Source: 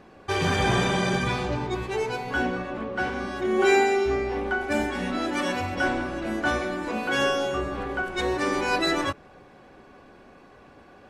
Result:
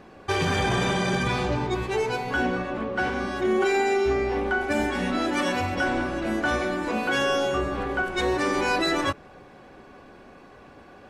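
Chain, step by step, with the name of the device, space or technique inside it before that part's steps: soft clipper into limiter (saturation -9.5 dBFS, distortion -28 dB; peak limiter -18 dBFS, peak gain reduction 7 dB); trim +2.5 dB

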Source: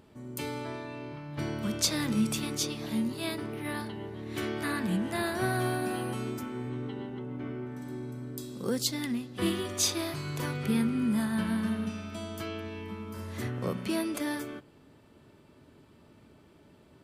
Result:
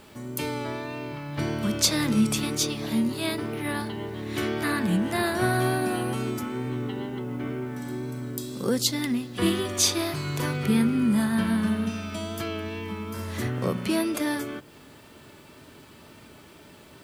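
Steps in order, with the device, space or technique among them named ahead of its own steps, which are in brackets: noise-reduction cassette on a plain deck (tape noise reduction on one side only encoder only; wow and flutter 29 cents; white noise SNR 36 dB); trim +5.5 dB

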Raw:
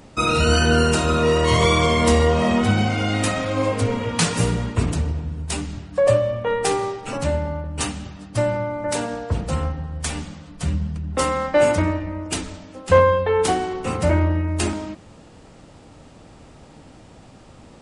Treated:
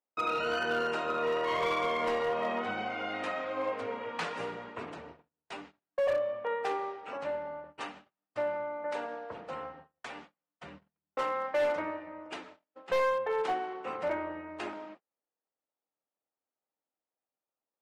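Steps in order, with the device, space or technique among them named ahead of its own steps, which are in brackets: walkie-talkie (band-pass 500–2200 Hz; hard clipper -16.5 dBFS, distortion -14 dB; gate -41 dBFS, range -37 dB); trim -8 dB

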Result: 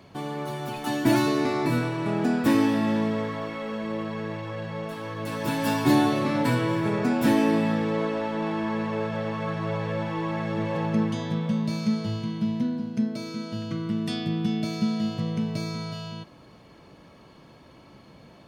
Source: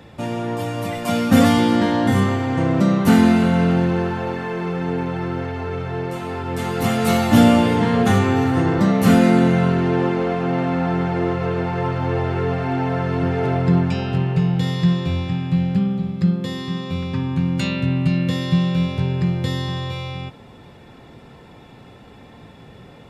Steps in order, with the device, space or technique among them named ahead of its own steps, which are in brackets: nightcore (tape speed +25%); trim -7.5 dB

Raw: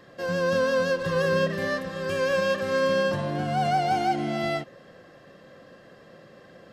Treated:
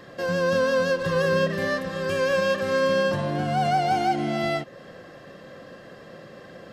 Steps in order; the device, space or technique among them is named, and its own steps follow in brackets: parallel compression (in parallel at 0 dB: compression, threshold -37 dBFS, peak gain reduction 16 dB)

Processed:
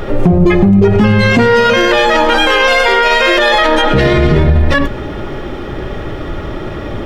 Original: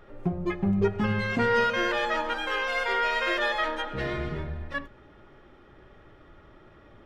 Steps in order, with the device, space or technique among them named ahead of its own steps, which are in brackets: peaking EQ 1.4 kHz -5.5 dB 1.5 oct; loud club master (compression 2.5:1, threshold -30 dBFS, peak gain reduction 7.5 dB; hard clipper -23.5 dBFS, distortion -29 dB; loudness maximiser +33 dB); trim -1 dB

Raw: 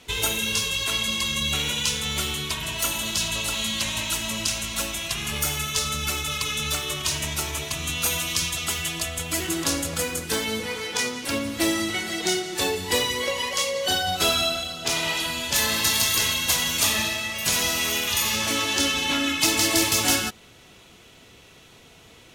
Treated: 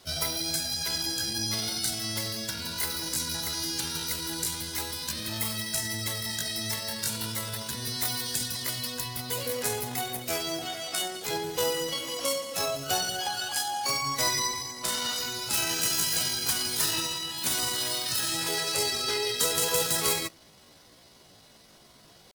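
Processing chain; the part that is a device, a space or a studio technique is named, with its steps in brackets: chipmunk voice (pitch shift +7 st); trim -4.5 dB

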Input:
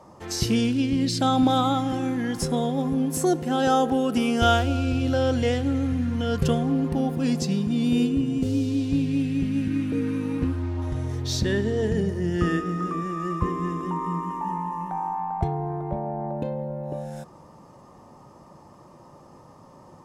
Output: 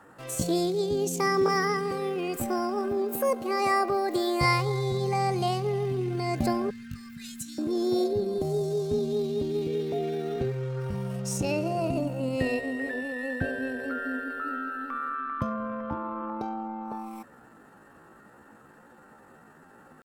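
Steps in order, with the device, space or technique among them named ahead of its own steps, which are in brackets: 6.71–7.60 s: elliptic band-stop 130–1100 Hz, stop band 40 dB; chipmunk voice (pitch shift +7 st); trim -4 dB

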